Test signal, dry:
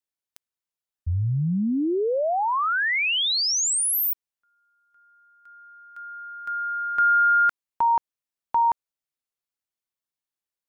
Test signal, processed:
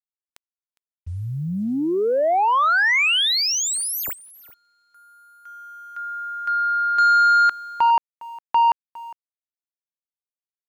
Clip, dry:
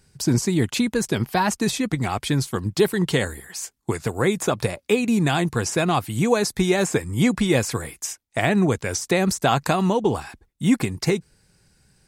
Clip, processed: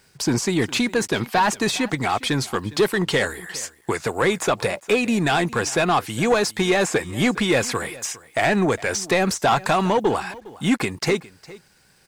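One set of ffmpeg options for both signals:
ffmpeg -i in.wav -filter_complex "[0:a]asplit=2[link_01][link_02];[link_02]highpass=frequency=720:poles=1,volume=17dB,asoftclip=type=tanh:threshold=-6dB[link_03];[link_01][link_03]amix=inputs=2:normalize=0,lowpass=frequency=3300:poles=1,volume=-6dB,aecho=1:1:408:0.1,acrusher=bits=8:mix=0:aa=0.5,volume=-2.5dB" out.wav

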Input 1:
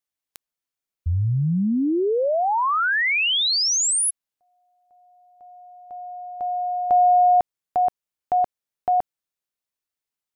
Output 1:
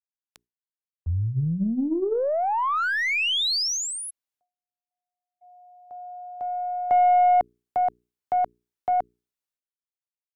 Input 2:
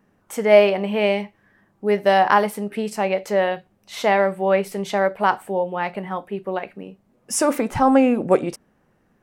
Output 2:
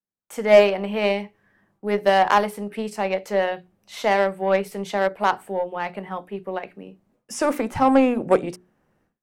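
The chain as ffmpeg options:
ffmpeg -i in.wav -filter_complex "[0:a]acrossover=split=6200[link_01][link_02];[link_02]acompressor=threshold=-34dB:ratio=4:attack=1:release=60[link_03];[link_01][link_03]amix=inputs=2:normalize=0,bandreject=frequency=60:width_type=h:width=6,bandreject=frequency=120:width_type=h:width=6,bandreject=frequency=180:width_type=h:width=6,bandreject=frequency=240:width_type=h:width=6,bandreject=frequency=300:width_type=h:width=6,bandreject=frequency=360:width_type=h:width=6,bandreject=frequency=420:width_type=h:width=6,agate=range=-33dB:threshold=-43dB:ratio=3:release=350:detection=rms,aeval=exprs='0.891*(cos(1*acos(clip(val(0)/0.891,-1,1)))-cos(1*PI/2))+0.0794*(cos(2*acos(clip(val(0)/0.891,-1,1)))-cos(2*PI/2))+0.00631*(cos(3*acos(clip(val(0)/0.891,-1,1)))-cos(3*PI/2))+0.0398*(cos(7*acos(clip(val(0)/0.891,-1,1)))-cos(7*PI/2))+0.0141*(cos(8*acos(clip(val(0)/0.891,-1,1)))-cos(8*PI/2))':channel_layout=same,acrossover=split=260|1400|2200[link_04][link_05][link_06][link_07];[link_06]asoftclip=type=hard:threshold=-30dB[link_08];[link_04][link_05][link_08][link_07]amix=inputs=4:normalize=0" out.wav

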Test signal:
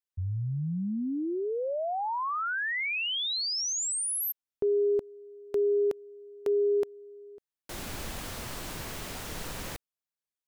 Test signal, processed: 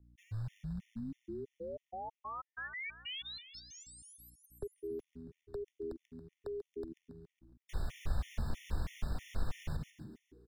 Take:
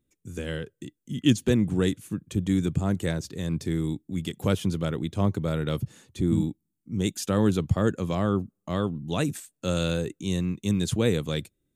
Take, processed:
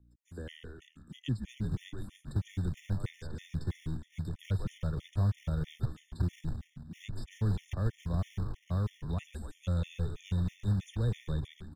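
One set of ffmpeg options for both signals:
ffmpeg -i in.wav -filter_complex "[0:a]asubboost=boost=10:cutoff=86,asplit=7[link_01][link_02][link_03][link_04][link_05][link_06][link_07];[link_02]adelay=139,afreqshift=-80,volume=-9dB[link_08];[link_03]adelay=278,afreqshift=-160,volume=-15.2dB[link_09];[link_04]adelay=417,afreqshift=-240,volume=-21.4dB[link_10];[link_05]adelay=556,afreqshift=-320,volume=-27.6dB[link_11];[link_06]adelay=695,afreqshift=-400,volume=-33.8dB[link_12];[link_07]adelay=834,afreqshift=-480,volume=-40dB[link_13];[link_01][link_08][link_09][link_10][link_11][link_12][link_13]amix=inputs=7:normalize=0,acrossover=split=160|560|5300[link_14][link_15][link_16][link_17];[link_14]acrusher=bits=4:mode=log:mix=0:aa=0.000001[link_18];[link_18][link_15][link_16][link_17]amix=inputs=4:normalize=0,aeval=exprs='val(0)+0.002*(sin(2*PI*60*n/s)+sin(2*PI*2*60*n/s)/2+sin(2*PI*3*60*n/s)/3+sin(2*PI*4*60*n/s)/4+sin(2*PI*5*60*n/s)/5)':channel_layout=same,acrossover=split=200|3300[link_19][link_20][link_21];[link_19]acompressor=threshold=-21dB:ratio=2[link_22];[link_20]acompressor=threshold=-36dB:ratio=2[link_23];[link_21]acompressor=threshold=-43dB:ratio=6[link_24];[link_22][link_23][link_24]amix=inputs=3:normalize=0,highshelf=frequency=7700:gain=-9.5,afftfilt=real='re*gt(sin(2*PI*3.1*pts/sr)*(1-2*mod(floor(b*sr/1024/1800),2)),0)':imag='im*gt(sin(2*PI*3.1*pts/sr)*(1-2*mod(floor(b*sr/1024/1800),2)),0)':win_size=1024:overlap=0.75,volume=-7dB" out.wav

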